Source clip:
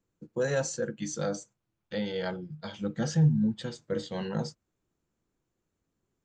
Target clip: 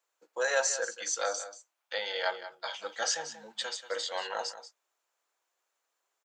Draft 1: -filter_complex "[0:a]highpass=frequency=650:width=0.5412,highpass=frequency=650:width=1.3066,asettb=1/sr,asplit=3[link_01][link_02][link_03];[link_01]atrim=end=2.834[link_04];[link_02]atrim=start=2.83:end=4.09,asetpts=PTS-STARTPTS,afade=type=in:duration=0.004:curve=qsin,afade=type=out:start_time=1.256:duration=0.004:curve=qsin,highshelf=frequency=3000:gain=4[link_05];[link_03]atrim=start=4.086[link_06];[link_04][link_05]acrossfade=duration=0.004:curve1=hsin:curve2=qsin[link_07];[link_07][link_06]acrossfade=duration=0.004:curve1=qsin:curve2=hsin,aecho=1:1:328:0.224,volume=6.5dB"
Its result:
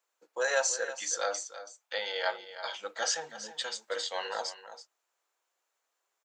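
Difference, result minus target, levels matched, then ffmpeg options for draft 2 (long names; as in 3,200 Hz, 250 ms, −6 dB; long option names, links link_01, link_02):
echo 144 ms late
-filter_complex "[0:a]highpass=frequency=650:width=0.5412,highpass=frequency=650:width=1.3066,asettb=1/sr,asplit=3[link_01][link_02][link_03];[link_01]atrim=end=2.834[link_04];[link_02]atrim=start=2.83:end=4.09,asetpts=PTS-STARTPTS,afade=type=in:duration=0.004:curve=qsin,afade=type=out:start_time=1.256:duration=0.004:curve=qsin,highshelf=frequency=3000:gain=4[link_05];[link_03]atrim=start=4.086[link_06];[link_04][link_05]acrossfade=duration=0.004:curve1=hsin:curve2=qsin[link_07];[link_07][link_06]acrossfade=duration=0.004:curve1=qsin:curve2=hsin,aecho=1:1:184:0.224,volume=6.5dB"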